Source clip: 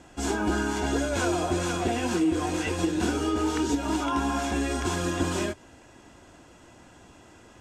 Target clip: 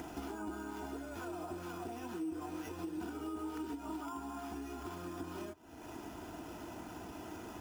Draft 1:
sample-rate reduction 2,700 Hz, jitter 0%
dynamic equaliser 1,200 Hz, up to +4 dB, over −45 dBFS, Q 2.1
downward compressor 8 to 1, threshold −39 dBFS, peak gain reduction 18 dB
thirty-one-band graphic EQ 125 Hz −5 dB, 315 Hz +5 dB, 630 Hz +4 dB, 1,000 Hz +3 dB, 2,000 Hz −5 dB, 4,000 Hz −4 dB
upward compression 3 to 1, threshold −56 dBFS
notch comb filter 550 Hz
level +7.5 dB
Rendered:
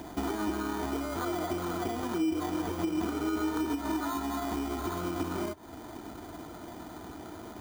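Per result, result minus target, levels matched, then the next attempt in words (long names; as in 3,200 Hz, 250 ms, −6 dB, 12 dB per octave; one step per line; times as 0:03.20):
downward compressor: peak gain reduction −10.5 dB; sample-rate reduction: distortion +7 dB
sample-rate reduction 2,700 Hz, jitter 0%
dynamic equaliser 1,200 Hz, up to +4 dB, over −45 dBFS, Q 2.1
downward compressor 8 to 1, threshold −51 dBFS, peak gain reduction 28.5 dB
thirty-one-band graphic EQ 125 Hz −5 dB, 315 Hz +5 dB, 630 Hz +4 dB, 1,000 Hz +3 dB, 2,000 Hz −5 dB, 4,000 Hz −4 dB
upward compression 3 to 1, threshold −56 dBFS
notch comb filter 550 Hz
level +7.5 dB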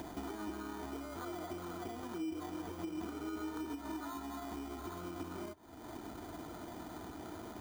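sample-rate reduction: distortion +7 dB
sample-rate reduction 8,400 Hz, jitter 0%
dynamic equaliser 1,200 Hz, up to +4 dB, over −45 dBFS, Q 2.1
downward compressor 8 to 1, threshold −51 dBFS, peak gain reduction 28.5 dB
thirty-one-band graphic EQ 125 Hz −5 dB, 315 Hz +5 dB, 630 Hz +4 dB, 1,000 Hz +3 dB, 2,000 Hz −5 dB, 4,000 Hz −4 dB
upward compression 3 to 1, threshold −56 dBFS
notch comb filter 550 Hz
level +7.5 dB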